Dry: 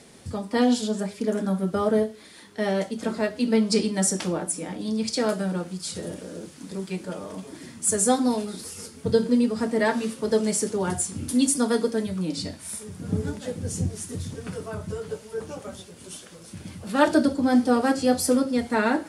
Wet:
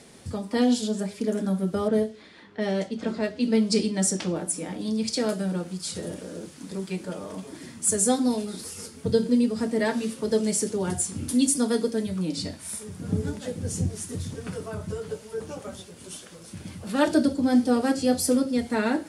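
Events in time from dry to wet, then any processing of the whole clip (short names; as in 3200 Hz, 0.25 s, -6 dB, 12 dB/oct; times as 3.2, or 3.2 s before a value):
1.88–4.36 low-pass opened by the level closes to 2500 Hz, open at -16.5 dBFS
whole clip: dynamic EQ 1100 Hz, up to -6 dB, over -37 dBFS, Q 0.8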